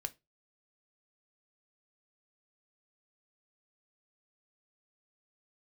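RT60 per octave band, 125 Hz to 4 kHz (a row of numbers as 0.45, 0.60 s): 0.30, 0.25, 0.25, 0.20, 0.20, 0.20 s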